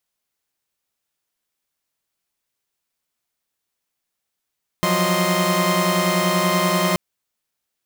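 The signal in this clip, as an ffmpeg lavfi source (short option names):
-f lavfi -i "aevalsrc='0.1*((2*mod(174.61*t,1)-1)+(2*mod(185*t,1)-1)+(2*mod(622.25*t,1)-1)+(2*mod(1046.5*t,1)-1))':d=2.13:s=44100"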